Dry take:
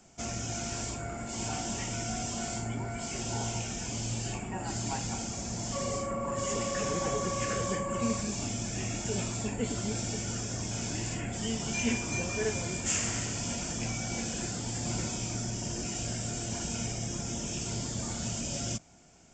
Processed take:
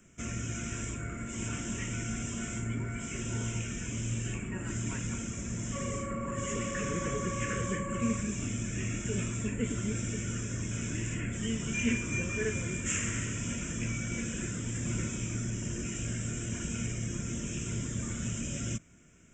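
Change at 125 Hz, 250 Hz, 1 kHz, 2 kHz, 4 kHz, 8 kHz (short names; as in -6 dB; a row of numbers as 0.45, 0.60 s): +1.5, +1.0, -5.5, +1.0, -6.5, -3.5 dB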